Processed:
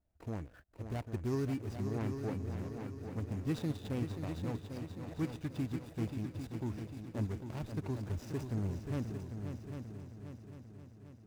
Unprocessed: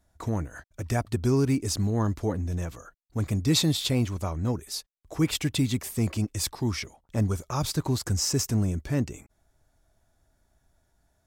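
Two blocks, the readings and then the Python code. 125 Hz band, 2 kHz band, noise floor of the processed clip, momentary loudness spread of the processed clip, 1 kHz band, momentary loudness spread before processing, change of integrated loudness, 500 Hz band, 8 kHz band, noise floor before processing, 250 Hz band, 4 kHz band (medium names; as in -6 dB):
-10.5 dB, -12.5 dB, -58 dBFS, 12 LU, -12.0 dB, 11 LU, -12.0 dB, -9.5 dB, -26.0 dB, -72 dBFS, -10.0 dB, -23.5 dB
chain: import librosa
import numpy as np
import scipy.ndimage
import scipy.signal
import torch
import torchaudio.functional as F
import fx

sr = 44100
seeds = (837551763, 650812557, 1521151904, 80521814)

p1 = scipy.ndimage.median_filter(x, 41, mode='constant')
p2 = fx.low_shelf(p1, sr, hz=440.0, db=-5.0)
p3 = p2 + fx.echo_heads(p2, sr, ms=266, heads='second and third', feedback_pct=56, wet_db=-8, dry=0)
y = p3 * librosa.db_to_amplitude(-7.5)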